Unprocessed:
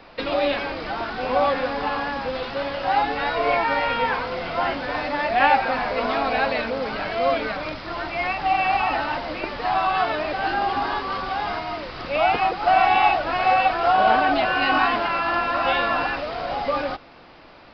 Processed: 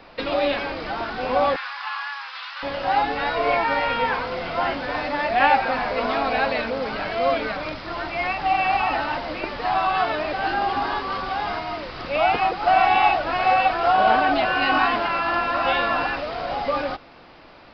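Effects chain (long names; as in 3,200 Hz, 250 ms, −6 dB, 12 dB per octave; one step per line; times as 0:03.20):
0:01.56–0:02.63: Butterworth high-pass 1,000 Hz 36 dB per octave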